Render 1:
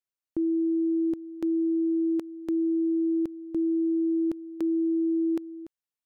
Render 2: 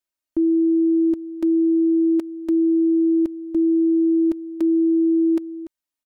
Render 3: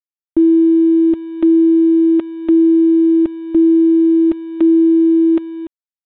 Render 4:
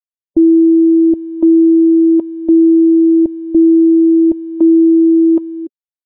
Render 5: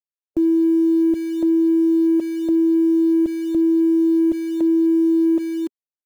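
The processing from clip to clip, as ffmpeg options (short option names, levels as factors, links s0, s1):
-af "aecho=1:1:3.2:0.98,volume=1.26"
-af "adynamicequalizer=threshold=0.0282:dfrequency=300:dqfactor=4.1:tfrequency=300:tqfactor=4.1:attack=5:release=100:ratio=0.375:range=2:mode=cutabove:tftype=bell,aresample=8000,aeval=exprs='sgn(val(0))*max(abs(val(0))-0.00266,0)':c=same,aresample=44100,volume=2.66"
-af "afftdn=nr=22:nf=-27,volume=1.33"
-filter_complex "[0:a]acrossover=split=260[s0][s1];[s0]acrusher=bits=6:mix=0:aa=0.000001[s2];[s1]adynamicsmooth=sensitivity=4.5:basefreq=510[s3];[s2][s3]amix=inputs=2:normalize=0,alimiter=limit=0.224:level=0:latency=1:release=32"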